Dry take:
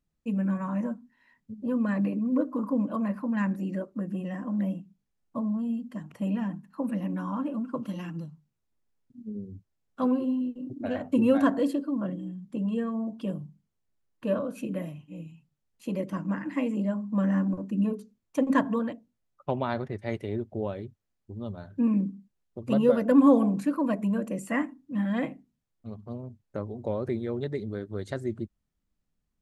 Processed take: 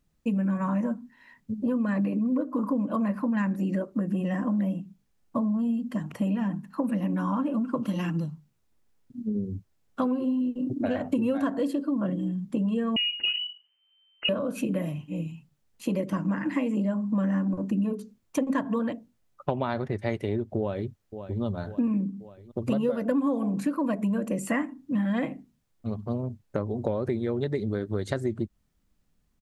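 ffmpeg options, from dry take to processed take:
-filter_complex "[0:a]asettb=1/sr,asplit=3[s0][s1][s2];[s0]atrim=end=12.964[s3];[s1]atrim=start=12.96:end=14.29,asetpts=PTS-STARTPTS,afade=t=in:d=0.004:c=qsin,afade=t=out:st=1.326:d=0.004:c=qsin,lowpass=f=2600:t=q:w=0.5098,lowpass=f=2600:t=q:w=0.6013,lowpass=f=2600:t=q:w=0.9,lowpass=f=2600:t=q:w=2.563,afreqshift=-3100[s4];[s2]atrim=start=14.286[s5];[s3][s4]acrossfade=d=0.004:c1=hsin:c2=qsin[s6];[s6][s5]acrossfade=d=0.004:c1=qsin:c2=hsin,asplit=2[s7][s8];[s8]afade=t=in:st=20.58:d=0.01,afade=t=out:st=21.43:d=0.01,aecho=0:1:540|1080|1620|2160|2700|3240:0.149624|0.0897741|0.0538645|0.0323187|0.0193912|0.0116347[s9];[s7][s9]amix=inputs=2:normalize=0,acompressor=threshold=0.0224:ratio=6,volume=2.82"

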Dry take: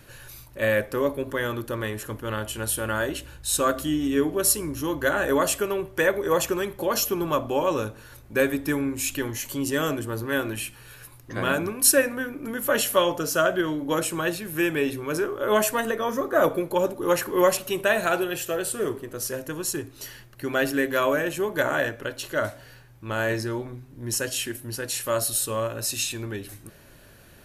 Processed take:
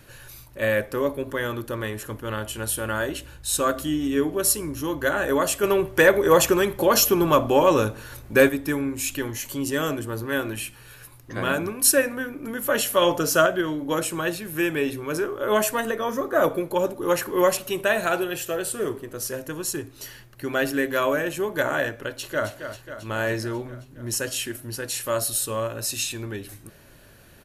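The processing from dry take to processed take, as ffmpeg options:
-filter_complex "[0:a]asettb=1/sr,asplit=3[s0][s1][s2];[s0]atrim=end=5.634[s3];[s1]atrim=start=5.63:end=8.49,asetpts=PTS-STARTPTS,afade=t=in:d=0.004:c=qsin,afade=t=out:st=2.856:d=0.004:c=qsin,acontrast=66[s4];[s2]atrim=start=8.486[s5];[s3][s4]acrossfade=d=0.004:c1=hsin:c2=qsin[s6];[s6][s5]acrossfade=d=0.004:c1=qsin:c2=hsin,asplit=2[s7][s8];[s8]afade=t=in:st=22.06:d=0.01,afade=t=out:st=22.49:d=0.01,aecho=0:1:270|540|810|1080|1350|1620|1890|2160|2430|2700:0.334965|0.234476|0.164133|0.114893|0.0804252|0.0562976|0.0394083|0.0275858|0.0193101|0.0135171[s9];[s7][s9]amix=inputs=2:normalize=0,asplit=3[s10][s11][s12];[s10]atrim=end=13.022[s13];[s11]atrim=start=13.018:end=13.462,asetpts=PTS-STARTPTS,volume=1.58[s14];[s12]atrim=start=13.458[s15];[s13][s14]acrossfade=d=0.004:c1=hsin:c2=hsin[s16];[s16][s15]acrossfade=d=0.004:c1=hsin:c2=hsin"

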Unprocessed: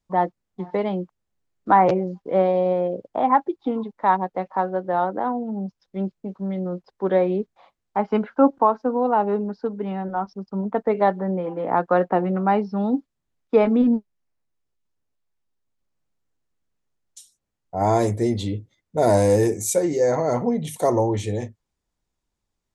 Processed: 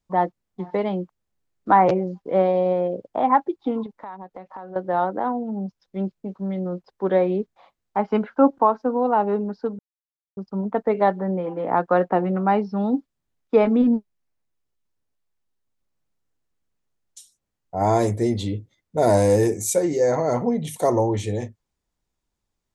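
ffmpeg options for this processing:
-filter_complex "[0:a]asettb=1/sr,asplit=3[s0][s1][s2];[s0]atrim=end=3.864[s3];[s1]atrim=start=3.86:end=4.76,asetpts=PTS-STARTPTS,afade=t=in:d=0.004:c=qsin,afade=t=out:st=0.896:d=0.004:c=qsin,acompressor=threshold=0.02:ratio=6:attack=3.2:release=140:knee=1:detection=peak[s4];[s2]atrim=start=4.756[s5];[s3][s4]acrossfade=d=0.004:c1=hsin:c2=qsin[s6];[s6][s5]acrossfade=d=0.004:c1=qsin:c2=hsin,asplit=3[s7][s8][s9];[s7]atrim=end=9.79,asetpts=PTS-STARTPTS,afade=t=out:st=9.786:d=0.004:c=hsin[s10];[s8]atrim=start=9.79:end=10.37,asetpts=PTS-STARTPTS,volume=0[s11];[s9]atrim=start=10.37,asetpts=PTS-STARTPTS,afade=t=in:d=0.004:c=hsin[s12];[s10][s11][s12]concat=n=3:v=0:a=1"

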